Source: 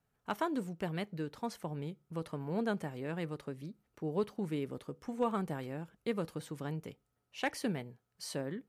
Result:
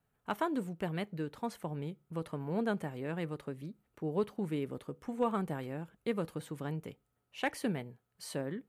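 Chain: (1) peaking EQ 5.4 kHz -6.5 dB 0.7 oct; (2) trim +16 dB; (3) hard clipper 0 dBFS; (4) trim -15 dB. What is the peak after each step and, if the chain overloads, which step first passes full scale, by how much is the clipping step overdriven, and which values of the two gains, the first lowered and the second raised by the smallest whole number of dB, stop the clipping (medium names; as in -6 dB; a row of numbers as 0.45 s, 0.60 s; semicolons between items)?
-21.0 dBFS, -5.0 dBFS, -5.0 dBFS, -20.0 dBFS; nothing clips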